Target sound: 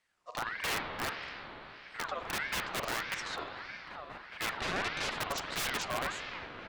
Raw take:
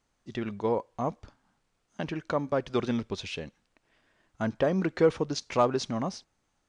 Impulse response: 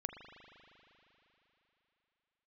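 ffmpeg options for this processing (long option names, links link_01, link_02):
-filter_complex "[0:a]aeval=exprs='(mod(16.8*val(0)+1,2)-1)/16.8':channel_layout=same,asplit=3[link_01][link_02][link_03];[link_01]afade=type=out:start_time=2.06:duration=0.02[link_04];[link_02]afreqshift=23,afade=type=in:start_time=2.06:duration=0.02,afade=type=out:start_time=2.98:duration=0.02[link_05];[link_03]afade=type=in:start_time=2.98:duration=0.02[link_06];[link_04][link_05][link_06]amix=inputs=3:normalize=0,asoftclip=type=tanh:threshold=-23dB,asettb=1/sr,asplit=3[link_07][link_08][link_09];[link_07]atrim=end=4.574[link_10];[link_08]atrim=start=4.57:end=5.12,asetpts=PTS-STARTPTS,afade=type=in:duration=0.004:curve=qsin,afade=type=out:start_time=0.546:duration=0.004:curve=qsin,highpass=140,lowpass=4600[link_11];[link_09]atrim=start=5.116[link_12];[link_10][link_11]acrossfade=duration=0.004:curve1=hsin:curve2=qsin[link_13];[link_13][link_12]acrossfade=duration=0.004:curve1=qsin:curve2=hsin,asplit=2[link_14][link_15];[link_15]adelay=1574,volume=-9dB,highshelf=frequency=4000:gain=-35.4[link_16];[link_14][link_16]amix=inputs=2:normalize=0[link_17];[1:a]atrim=start_sample=2205,asetrate=40131,aresample=44100[link_18];[link_17][link_18]afir=irnorm=-1:irlink=0,aeval=exprs='val(0)*sin(2*PI*1400*n/s+1400*0.4/1.6*sin(2*PI*1.6*n/s))':channel_layout=same,volume=1.5dB"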